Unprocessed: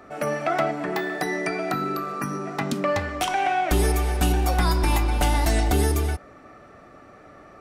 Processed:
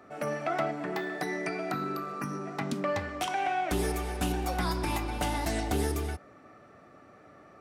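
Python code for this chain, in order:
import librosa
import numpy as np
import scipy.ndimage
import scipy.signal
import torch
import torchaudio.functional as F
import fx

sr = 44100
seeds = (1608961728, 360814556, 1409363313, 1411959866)

y = scipy.signal.sosfilt(scipy.signal.butter(2, 98.0, 'highpass', fs=sr, output='sos'), x)
y = fx.low_shelf(y, sr, hz=180.0, db=3.5)
y = fx.doppler_dist(y, sr, depth_ms=0.14)
y = y * 10.0 ** (-7.0 / 20.0)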